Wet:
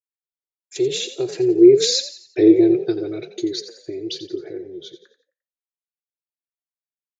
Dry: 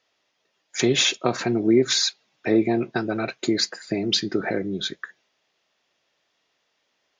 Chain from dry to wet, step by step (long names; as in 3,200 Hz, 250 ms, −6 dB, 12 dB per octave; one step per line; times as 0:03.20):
source passing by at 0:02.23, 16 m/s, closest 7.5 metres
downward expander −50 dBFS
drawn EQ curve 150 Hz 0 dB, 220 Hz −29 dB, 350 Hz +13 dB, 550 Hz −4 dB, 1,100 Hz −17 dB, 3,400 Hz +1 dB
echo with shifted repeats 87 ms, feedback 40%, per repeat +44 Hz, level −12 dB
level +2.5 dB